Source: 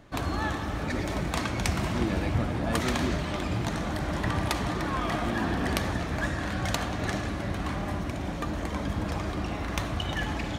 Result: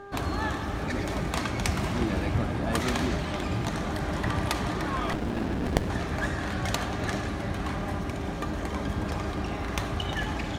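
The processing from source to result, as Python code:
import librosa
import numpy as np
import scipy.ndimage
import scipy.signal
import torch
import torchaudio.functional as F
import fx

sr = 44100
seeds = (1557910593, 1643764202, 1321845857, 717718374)

y = fx.dmg_buzz(x, sr, base_hz=400.0, harmonics=4, level_db=-44.0, tilt_db=-4, odd_only=False)
y = fx.running_max(y, sr, window=33, at=(5.13, 5.9))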